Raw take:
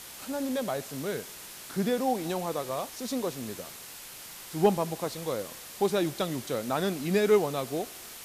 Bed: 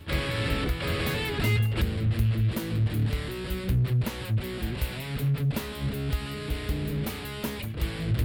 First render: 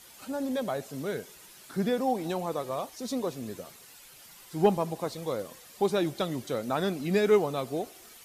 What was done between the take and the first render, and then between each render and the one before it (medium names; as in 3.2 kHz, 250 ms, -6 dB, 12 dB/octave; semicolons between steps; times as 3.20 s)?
noise reduction 10 dB, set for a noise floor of -45 dBFS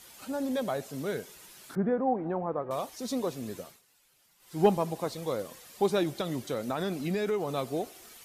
1.75–2.71 s: low-pass 1.6 kHz 24 dB/octave; 3.61–4.60 s: dip -15 dB, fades 0.21 s; 6.03–7.49 s: compression, threshold -26 dBFS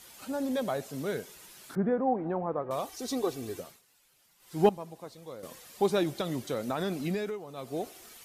2.85–3.60 s: comb 2.6 ms, depth 62%; 4.69–5.43 s: gain -11.5 dB; 7.09–7.87 s: dip -11.5 dB, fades 0.32 s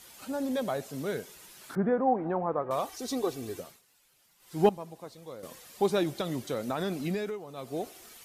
1.61–2.98 s: peaking EQ 1.2 kHz +4 dB 2.1 oct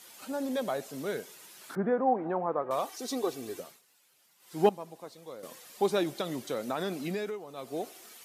Bessel high-pass 220 Hz, order 2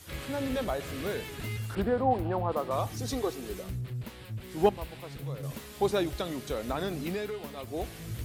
add bed -11.5 dB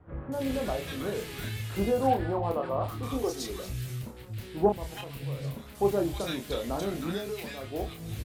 doubling 30 ms -5 dB; bands offset in time lows, highs 320 ms, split 1.3 kHz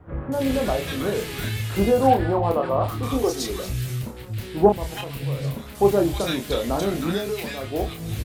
trim +8 dB